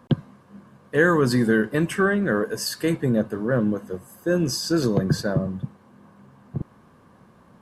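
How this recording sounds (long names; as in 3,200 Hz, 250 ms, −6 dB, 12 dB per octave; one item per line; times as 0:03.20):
background noise floor −54 dBFS
spectral slope −5.5 dB per octave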